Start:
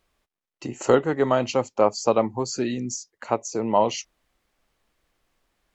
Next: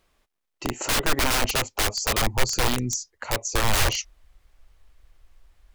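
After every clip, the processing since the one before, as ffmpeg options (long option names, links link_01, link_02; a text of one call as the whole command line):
ffmpeg -i in.wav -af "aeval=exprs='(mod(11.2*val(0)+1,2)-1)/11.2':channel_layout=same,asubboost=boost=11:cutoff=69,volume=4dB" out.wav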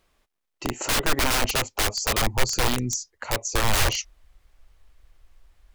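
ffmpeg -i in.wav -af anull out.wav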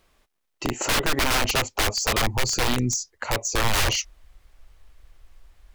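ffmpeg -i in.wav -filter_complex "[0:a]acrossover=split=2600[link_01][link_02];[link_01]alimiter=limit=-19.5dB:level=0:latency=1:release=24[link_03];[link_02]asoftclip=type=tanh:threshold=-22.5dB[link_04];[link_03][link_04]amix=inputs=2:normalize=0,volume=4dB" out.wav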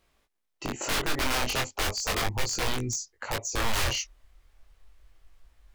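ffmpeg -i in.wav -af "flanger=delay=18.5:depth=5.2:speed=0.35,volume=-2.5dB" out.wav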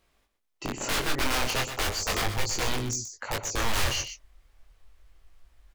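ffmpeg -i in.wav -af "aecho=1:1:123:0.335" out.wav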